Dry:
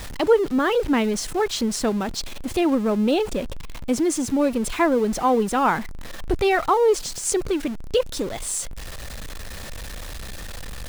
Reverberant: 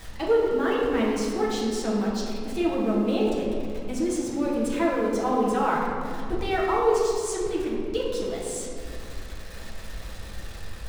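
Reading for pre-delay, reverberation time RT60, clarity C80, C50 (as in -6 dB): 6 ms, 2.4 s, 1.5 dB, 0.0 dB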